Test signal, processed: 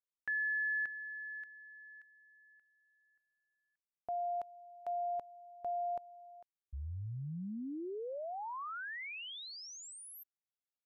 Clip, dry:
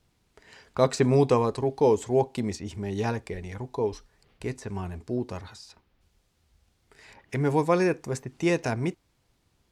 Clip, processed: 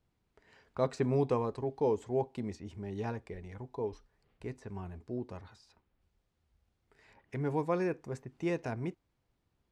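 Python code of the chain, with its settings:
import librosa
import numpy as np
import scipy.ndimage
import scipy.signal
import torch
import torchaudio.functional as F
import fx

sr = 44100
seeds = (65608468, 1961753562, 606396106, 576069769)

y = fx.high_shelf(x, sr, hz=3500.0, db=-11.0)
y = F.gain(torch.from_numpy(y), -8.5).numpy()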